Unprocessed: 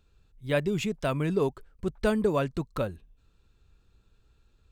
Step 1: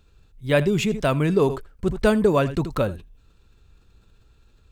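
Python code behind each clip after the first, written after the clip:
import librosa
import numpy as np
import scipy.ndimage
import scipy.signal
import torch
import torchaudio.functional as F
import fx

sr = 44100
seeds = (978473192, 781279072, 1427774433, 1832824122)

y = x + 10.0 ** (-21.0 / 20.0) * np.pad(x, (int(81 * sr / 1000.0), 0))[:len(x)]
y = fx.sustainer(y, sr, db_per_s=130.0)
y = F.gain(torch.from_numpy(y), 7.0).numpy()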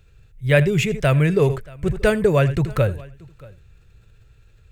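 y = fx.graphic_eq(x, sr, hz=(125, 250, 500, 1000, 2000, 4000), db=(9, -11, 3, -8, 7, -5))
y = y + 10.0 ** (-23.5 / 20.0) * np.pad(y, (int(630 * sr / 1000.0), 0))[:len(y)]
y = F.gain(torch.from_numpy(y), 3.0).numpy()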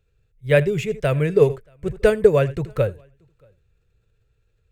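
y = fx.peak_eq(x, sr, hz=470.0, db=7.5, octaves=0.61)
y = fx.upward_expand(y, sr, threshold_db=-33.0, expansion=1.5)
y = F.gain(torch.from_numpy(y), -1.0).numpy()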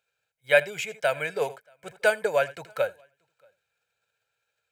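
y = scipy.signal.sosfilt(scipy.signal.butter(2, 670.0, 'highpass', fs=sr, output='sos'), x)
y = y + 0.64 * np.pad(y, (int(1.3 * sr / 1000.0), 0))[:len(y)]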